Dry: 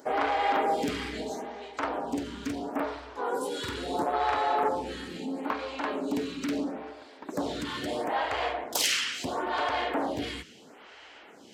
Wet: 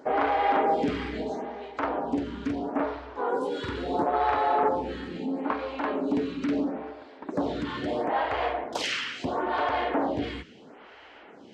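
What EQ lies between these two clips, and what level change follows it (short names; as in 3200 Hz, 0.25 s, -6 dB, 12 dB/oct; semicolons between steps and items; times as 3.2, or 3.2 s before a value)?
tape spacing loss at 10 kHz 24 dB; +4.5 dB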